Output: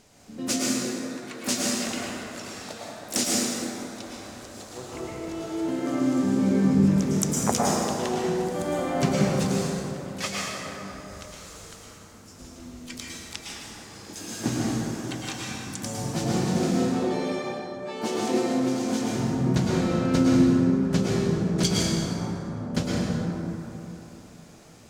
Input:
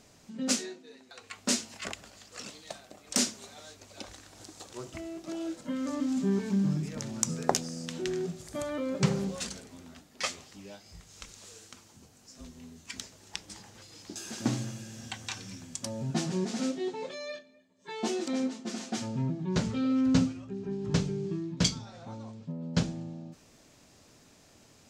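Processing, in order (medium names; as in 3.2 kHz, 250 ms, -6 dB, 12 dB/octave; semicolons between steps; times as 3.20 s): harmony voices -12 st -17 dB, +5 st -8 dB, +12 st -16 dB; plate-style reverb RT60 3.4 s, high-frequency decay 0.4×, pre-delay 95 ms, DRR -5.5 dB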